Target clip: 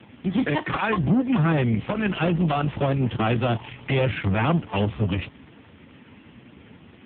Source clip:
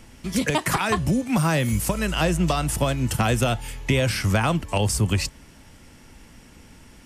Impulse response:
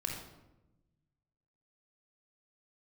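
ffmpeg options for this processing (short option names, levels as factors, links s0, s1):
-af "aeval=exprs='(tanh(15.8*val(0)+0.35)-tanh(0.35))/15.8':c=same,volume=2.37" -ar 8000 -c:a libopencore_amrnb -b:a 4750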